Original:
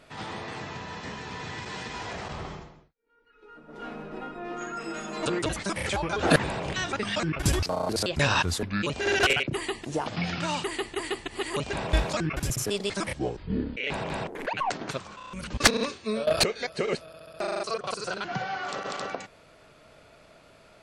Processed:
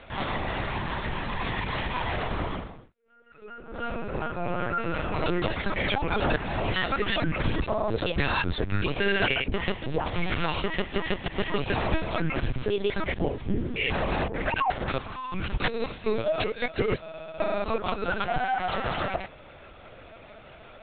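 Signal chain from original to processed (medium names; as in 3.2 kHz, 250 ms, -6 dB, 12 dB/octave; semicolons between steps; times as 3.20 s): compression 5:1, threshold -30 dBFS, peak gain reduction 14.5 dB; comb of notches 290 Hz; LPC vocoder at 8 kHz pitch kept; trim +8.5 dB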